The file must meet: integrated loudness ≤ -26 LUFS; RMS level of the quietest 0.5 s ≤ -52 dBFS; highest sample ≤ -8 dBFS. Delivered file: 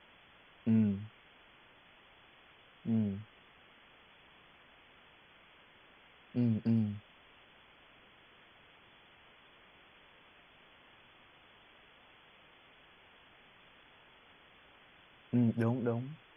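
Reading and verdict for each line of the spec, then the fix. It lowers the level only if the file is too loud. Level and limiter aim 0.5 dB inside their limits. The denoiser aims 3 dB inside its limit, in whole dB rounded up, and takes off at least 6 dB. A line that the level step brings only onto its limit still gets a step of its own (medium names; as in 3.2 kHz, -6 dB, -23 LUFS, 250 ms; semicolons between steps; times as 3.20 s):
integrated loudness -34.0 LUFS: pass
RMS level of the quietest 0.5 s -61 dBFS: pass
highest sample -19.5 dBFS: pass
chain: none needed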